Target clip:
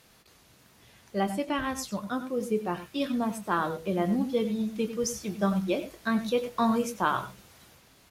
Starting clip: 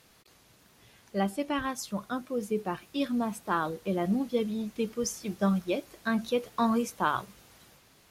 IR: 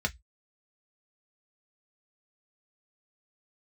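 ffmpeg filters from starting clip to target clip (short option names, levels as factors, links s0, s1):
-filter_complex "[0:a]asplit=2[s0][s1];[s1]adelay=23,volume=0.251[s2];[s0][s2]amix=inputs=2:normalize=0,asplit=2[s3][s4];[1:a]atrim=start_sample=2205,adelay=93[s5];[s4][s5]afir=irnorm=-1:irlink=0,volume=0.133[s6];[s3][s6]amix=inputs=2:normalize=0,volume=1.12"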